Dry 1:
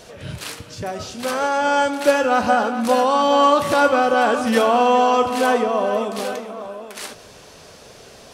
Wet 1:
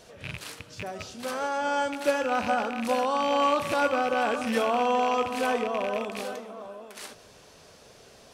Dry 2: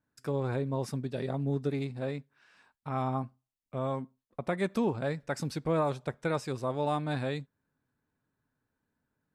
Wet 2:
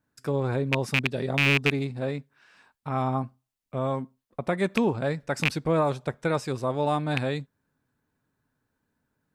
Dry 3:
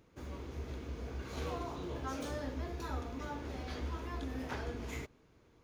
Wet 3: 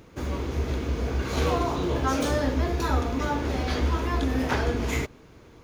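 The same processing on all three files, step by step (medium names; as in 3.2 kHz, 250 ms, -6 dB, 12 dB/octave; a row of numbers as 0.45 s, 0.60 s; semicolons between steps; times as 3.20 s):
rattle on loud lows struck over -30 dBFS, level -14 dBFS; normalise loudness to -27 LUFS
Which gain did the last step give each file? -9.0 dB, +5.0 dB, +15.0 dB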